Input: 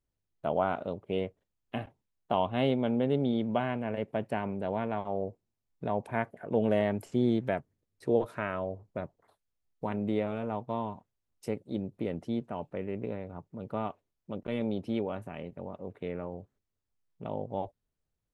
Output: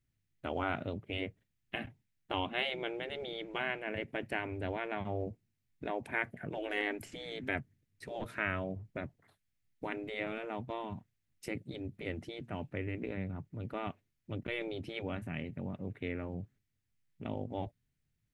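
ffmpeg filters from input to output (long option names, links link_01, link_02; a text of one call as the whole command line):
ffmpeg -i in.wav -af "equalizer=frequency=125:width_type=o:width=1:gain=9,equalizer=frequency=250:width_type=o:width=1:gain=3,equalizer=frequency=500:width_type=o:width=1:gain=-7,equalizer=frequency=1000:width_type=o:width=1:gain=-8,equalizer=frequency=2000:width_type=o:width=1:gain=8,afftfilt=real='re*lt(hypot(re,im),0.126)':imag='im*lt(hypot(re,im),0.126)':win_size=1024:overlap=0.75,volume=1dB" out.wav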